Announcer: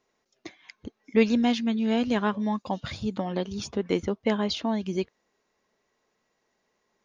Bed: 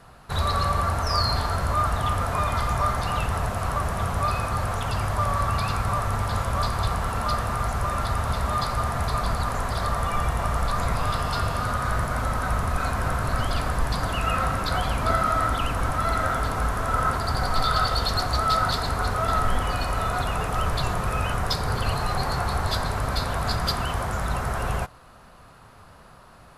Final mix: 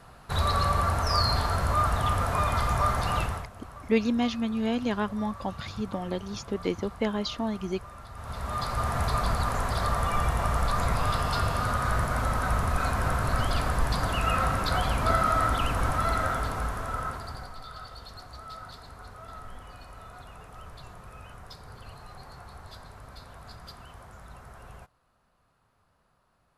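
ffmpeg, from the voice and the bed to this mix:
-filter_complex "[0:a]adelay=2750,volume=0.708[s0];[1:a]volume=6.31,afade=t=out:st=3.18:d=0.3:silence=0.133352,afade=t=in:st=8.13:d=0.85:silence=0.133352,afade=t=out:st=15.91:d=1.66:silence=0.112202[s1];[s0][s1]amix=inputs=2:normalize=0"

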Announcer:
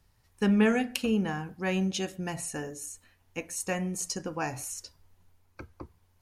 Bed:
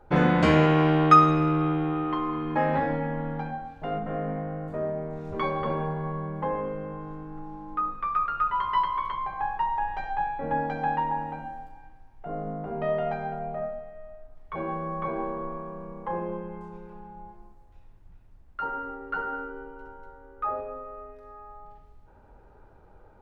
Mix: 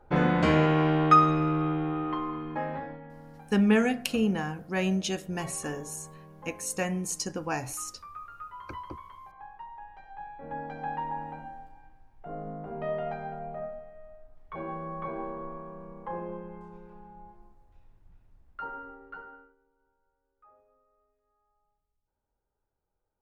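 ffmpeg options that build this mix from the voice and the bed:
-filter_complex "[0:a]adelay=3100,volume=1.12[s0];[1:a]volume=2.82,afade=t=out:st=2.12:d=0.89:silence=0.199526,afade=t=in:st=10.05:d=1.23:silence=0.251189,afade=t=out:st=18.48:d=1.08:silence=0.0530884[s1];[s0][s1]amix=inputs=2:normalize=0"

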